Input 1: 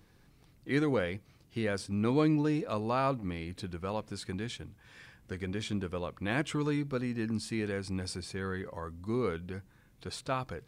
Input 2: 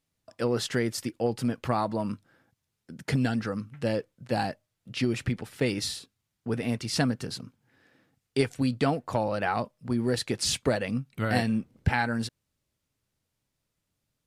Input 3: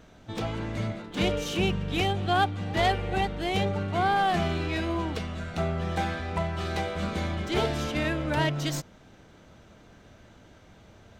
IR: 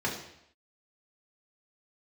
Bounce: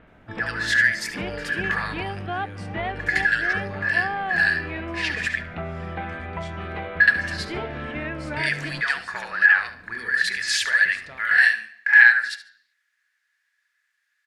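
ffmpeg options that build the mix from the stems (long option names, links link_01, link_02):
-filter_complex "[0:a]acompressor=threshold=-44dB:ratio=2,adelay=800,volume=-7.5dB,asplit=2[link_01][link_02];[link_02]volume=-15dB[link_03];[1:a]highpass=frequency=1700:width_type=q:width=12,volume=2dB,asplit=3[link_04][link_05][link_06];[link_04]atrim=end=5.35,asetpts=PTS-STARTPTS,afade=type=out:start_time=5.346:duration=0.004:curve=hsin[link_07];[link_05]atrim=start=5.35:end=7,asetpts=PTS-STARTPTS,volume=0[link_08];[link_06]atrim=start=7,asetpts=PTS-STARTPTS,afade=type=in:duration=0.004:curve=hsin[link_09];[link_07][link_08][link_09]concat=n=3:v=0:a=1,asplit=3[link_10][link_11][link_12];[link_11]volume=-18.5dB[link_13];[link_12]volume=-7dB[link_14];[2:a]volume=-0.5dB[link_15];[link_10][link_15]amix=inputs=2:normalize=0,lowpass=frequency=2300:width=0.5412,lowpass=frequency=2300:width=1.3066,acompressor=threshold=-31dB:ratio=2,volume=0dB[link_16];[3:a]atrim=start_sample=2205[link_17];[link_03][link_13]amix=inputs=2:normalize=0[link_18];[link_18][link_17]afir=irnorm=-1:irlink=0[link_19];[link_14]aecho=0:1:72|144|216:1|0.21|0.0441[link_20];[link_01][link_16][link_19][link_20]amix=inputs=4:normalize=0,equalizer=frequency=3900:width_type=o:width=2.7:gain=8"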